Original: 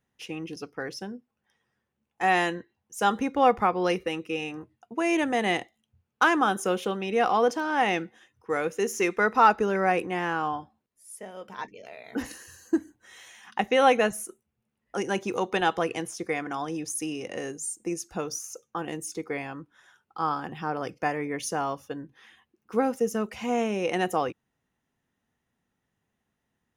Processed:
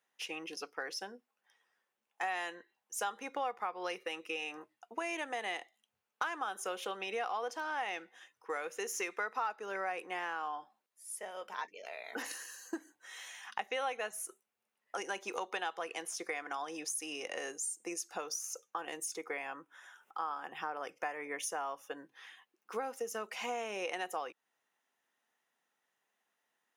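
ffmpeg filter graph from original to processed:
-filter_complex "[0:a]asettb=1/sr,asplit=3[s0][s1][s2];[s0]atrim=end=19.164[s3];[s1]atrim=start=19.16:end=21.97,asetpts=PTS-STARTPTS,afade=t=in:d=0.004:c=qsin,afade=t=out:st=2.806:d=0.004:c=qsin,equalizer=f=4400:t=o:w=0.35:g=-12.5,acompressor=mode=upward:threshold=0.00316:ratio=2.5:attack=3.2:release=140:knee=2.83:detection=peak[s4];[s2]atrim=start=21.966[s5];[s3][s4]acrossfade=d=0.004:c1=hsin:c2=qsin[s6];[s6][s5]acrossfade=d=0.004:c1=qsin:c2=hsin,highpass=630,acompressor=threshold=0.0141:ratio=4,volume=1.12"

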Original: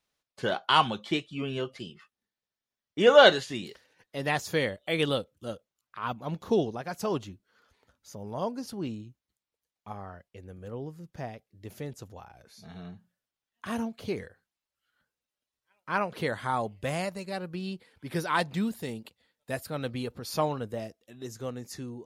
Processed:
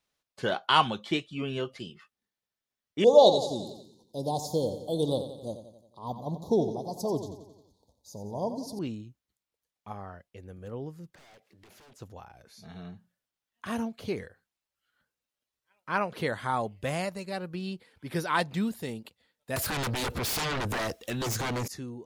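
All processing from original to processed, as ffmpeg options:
-filter_complex "[0:a]asettb=1/sr,asplit=3[s0][s1][s2];[s0]atrim=end=3.044[s3];[s1]atrim=start=3.04:end=8.79,asetpts=PTS-STARTPTS,afade=t=in:d=0.004:c=qsin,afade=t=out:st=5.746:d=0.004:c=qsin,asuperstop=centerf=1900:order=12:qfactor=0.69,aecho=1:1:89|178|267|356|445|534:0.299|0.164|0.0903|0.0497|0.0273|0.015,atrim=end_sample=253575[s4];[s2]atrim=start=8.786[s5];[s3][s4]acrossfade=d=0.004:c1=hsin:c2=qsin[s6];[s6][s5]acrossfade=d=0.004:c1=qsin:c2=hsin,asettb=1/sr,asplit=3[s7][s8][s9];[s7]atrim=end=11.144[s10];[s8]atrim=start=11.14:end=12.01,asetpts=PTS-STARTPTS,afade=t=in:d=0.004:c=qsin,afade=t=out:st=0.866:d=0.004:c=qsin,asplit=2[s11][s12];[s12]highpass=f=720:p=1,volume=17.8,asoftclip=type=tanh:threshold=0.0531[s13];[s11][s13]amix=inputs=2:normalize=0,lowpass=f=3600:p=1,volume=0.501,aeval=exprs='0.0178*(abs(mod(val(0)/0.0178+3,4)-2)-1)':c=same,acompressor=threshold=0.00158:ratio=5:attack=3.2:release=140:knee=1:detection=peak[s14];[s9]atrim=start=12.006[s15];[s10][s14]acrossfade=d=0.004:c1=hsin:c2=qsin[s16];[s16][s15]acrossfade=d=0.004:c1=qsin:c2=hsin,asettb=1/sr,asplit=3[s17][s18][s19];[s17]atrim=end=19.564[s20];[s18]atrim=start=19.56:end=21.68,asetpts=PTS-STARTPTS,afade=t=in:d=0.004:c=qsin,afade=t=out:st=2.116:d=0.004:c=qsin,equalizer=f=230:t=o:w=1.5:g=-5,acompressor=threshold=0.00501:ratio=2:attack=3.2:release=140:knee=1:detection=peak,aeval=exprs='0.0422*sin(PI/2*8.91*val(0)/0.0422)':c=same[s21];[s19]atrim=start=21.676[s22];[s20][s21]acrossfade=d=0.004:c1=hsin:c2=qsin[s23];[s23][s22]acrossfade=d=0.004:c1=qsin:c2=hsin"

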